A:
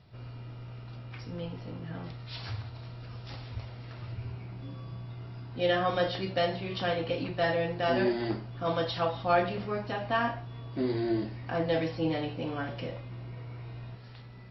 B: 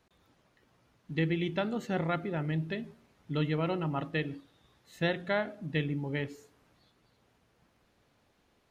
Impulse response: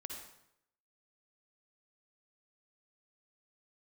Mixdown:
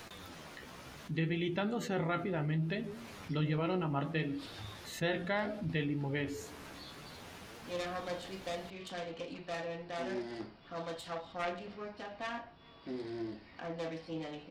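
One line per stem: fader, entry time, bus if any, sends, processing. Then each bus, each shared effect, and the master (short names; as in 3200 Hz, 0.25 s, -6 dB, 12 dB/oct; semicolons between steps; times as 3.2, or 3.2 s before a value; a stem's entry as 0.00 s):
-11.0 dB, 2.10 s, no send, self-modulated delay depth 0.3 ms
-1.0 dB, 0.00 s, no send, flange 0.66 Hz, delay 8.4 ms, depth 8 ms, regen +39%; fast leveller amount 50%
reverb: off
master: notches 60/120 Hz; mismatched tape noise reduction encoder only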